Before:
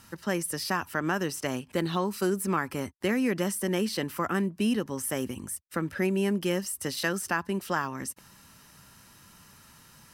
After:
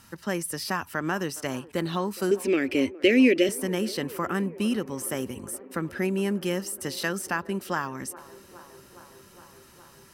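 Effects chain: 2.31–3.49 s: FFT filter 110 Hz 0 dB, 180 Hz -12 dB, 270 Hz +12 dB, 580 Hz +7 dB, 980 Hz -22 dB, 2.4 kHz +14 dB, 11 kHz -6 dB; feedback echo behind a band-pass 414 ms, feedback 78%, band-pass 630 Hz, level -18 dB

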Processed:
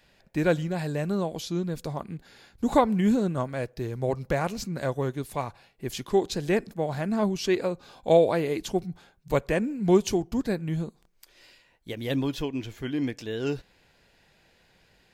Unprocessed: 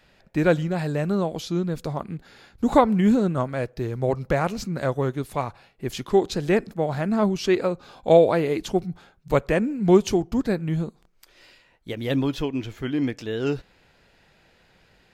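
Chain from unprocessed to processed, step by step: treble shelf 4.8 kHz +6 dB; band-stop 1.3 kHz, Q 12; trim -4 dB

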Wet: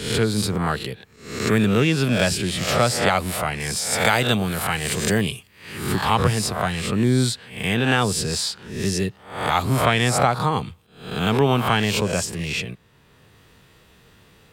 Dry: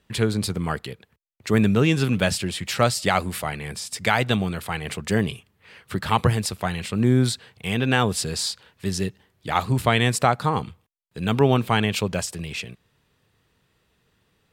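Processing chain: reverse spectral sustain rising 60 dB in 0.53 s; 3.60–5.96 s: treble shelf 5.3 kHz +9.5 dB; three bands compressed up and down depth 40%

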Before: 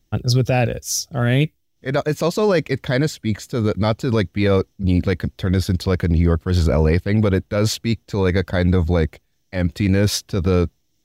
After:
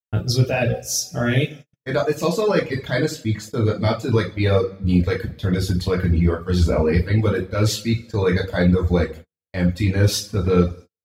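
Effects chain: two-slope reverb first 0.55 s, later 2.1 s, DRR -3 dB; reverb removal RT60 0.93 s; gate -32 dBFS, range -48 dB; trim -4 dB

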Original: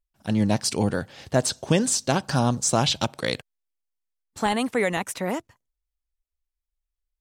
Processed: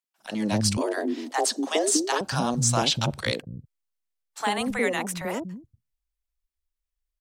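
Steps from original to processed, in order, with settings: three bands offset in time highs, mids, lows 40/240 ms, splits 200/640 Hz; 0.77–2.21 s: frequency shift +150 Hz

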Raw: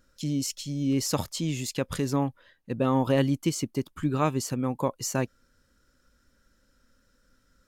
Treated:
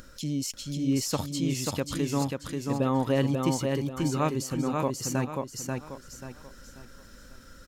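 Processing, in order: upward compressor, threshold -33 dBFS; on a send: feedback delay 537 ms, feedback 34%, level -3.5 dB; on the sum: trim -2 dB

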